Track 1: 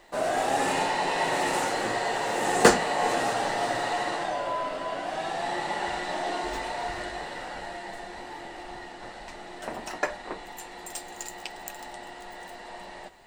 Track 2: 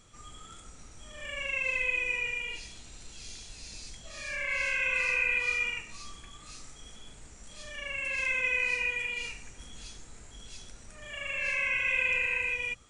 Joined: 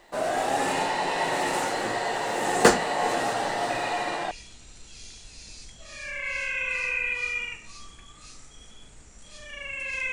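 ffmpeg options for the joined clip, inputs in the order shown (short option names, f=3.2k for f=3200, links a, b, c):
-filter_complex "[1:a]asplit=2[a][b];[0:a]apad=whole_dur=10.12,atrim=end=10.12,atrim=end=4.312[c];[b]atrim=start=2.558:end=8.37[d];[a]atrim=start=1.95:end=2.56,asetpts=PTS-STARTPTS,volume=-9.5dB,afade=t=in:d=0.004:c=hsin,afade=t=out:st=0.606:d=0.004:c=hsin,adelay=3700[e];[c][d]acrossfade=d=0.004:c1=hsin:c2=hsin[f];[f][e]amix=inputs=2:normalize=0"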